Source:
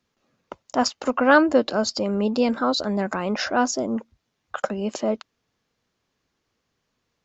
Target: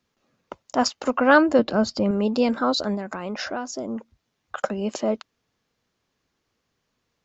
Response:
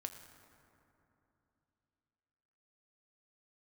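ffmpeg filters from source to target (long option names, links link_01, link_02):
-filter_complex "[0:a]asettb=1/sr,asplit=3[link_01][link_02][link_03];[link_01]atrim=end=1.594[link_04];[link_02]atrim=start=1.59:end=2.11,asetpts=PTS-STARTPTS,afade=type=in:duration=0.004:curve=qsin,afade=type=out:start_time=0.516:duration=0.004:curve=qsin,bass=frequency=250:gain=8,treble=frequency=4000:gain=-8[link_05];[link_03]atrim=start=2.106[link_06];[link_04][link_05]acrossfade=duration=0.004:curve1=hsin:curve2=qsin[link_07];[link_07][link_06]acrossfade=duration=0.004:curve1=qsin:curve2=hsin,asettb=1/sr,asplit=3[link_08][link_09][link_10];[link_08]atrim=end=2.944[link_11];[link_09]atrim=start=2.94:end=4.58,asetpts=PTS-STARTPTS,afade=type=in:duration=0.004:curve=qsin,afade=type=out:start_time=1.636:duration=0.004:curve=qsin,acompressor=threshold=-26dB:ratio=10[link_12];[link_10]atrim=start=4.576[link_13];[link_11][link_12]acrossfade=duration=0.004:curve1=hsin:curve2=qsin[link_14];[link_14][link_13]acrossfade=duration=0.004:curve1=qsin:curve2=hsin"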